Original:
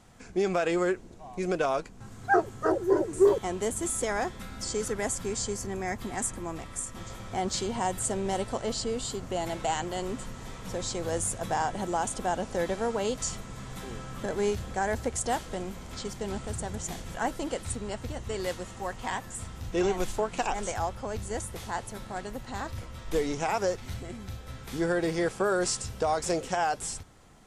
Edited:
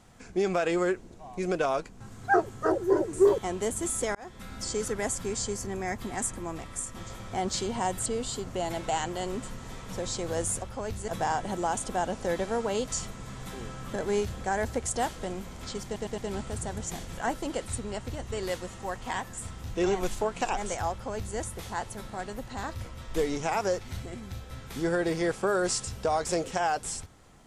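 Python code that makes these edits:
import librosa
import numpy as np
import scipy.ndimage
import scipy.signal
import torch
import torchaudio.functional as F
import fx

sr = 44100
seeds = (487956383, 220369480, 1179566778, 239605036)

y = fx.edit(x, sr, fx.fade_in_span(start_s=4.15, length_s=0.37),
    fx.cut(start_s=8.06, length_s=0.76),
    fx.stutter(start_s=16.15, slice_s=0.11, count=4),
    fx.duplicate(start_s=20.88, length_s=0.46, to_s=11.38), tone=tone)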